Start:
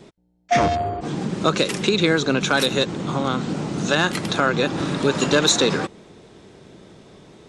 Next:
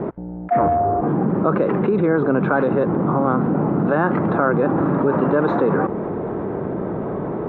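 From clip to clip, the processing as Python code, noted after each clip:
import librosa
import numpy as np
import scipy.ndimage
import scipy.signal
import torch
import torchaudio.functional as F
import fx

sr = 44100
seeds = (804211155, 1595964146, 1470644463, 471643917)

y = scipy.signal.sosfilt(scipy.signal.butter(4, 1300.0, 'lowpass', fs=sr, output='sos'), x)
y = fx.low_shelf(y, sr, hz=83.0, db=-11.5)
y = fx.env_flatten(y, sr, amount_pct=70)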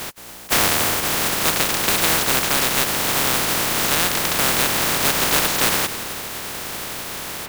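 y = fx.spec_flatten(x, sr, power=0.1)
y = y + 10.0 ** (-13.0 / 20.0) * np.pad(y, (int(271 * sr / 1000.0), 0))[:len(y)]
y = fx.upward_expand(y, sr, threshold_db=-31.0, expansion=1.5)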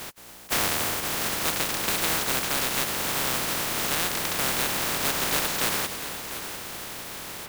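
y = x + 10.0 ** (-12.0 / 20.0) * np.pad(x, (int(696 * sr / 1000.0), 0))[:len(x)]
y = F.gain(torch.from_numpy(y), -7.5).numpy()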